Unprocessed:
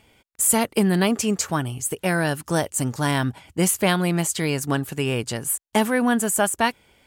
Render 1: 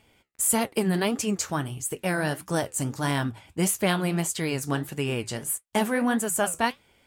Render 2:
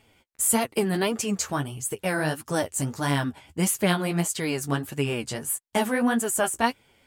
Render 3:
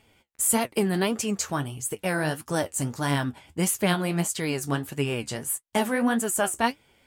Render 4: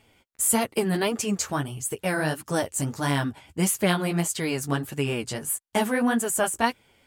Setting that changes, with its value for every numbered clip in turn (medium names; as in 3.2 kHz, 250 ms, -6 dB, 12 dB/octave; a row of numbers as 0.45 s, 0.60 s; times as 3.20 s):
flange, regen: -66%, +20%, +50%, -13%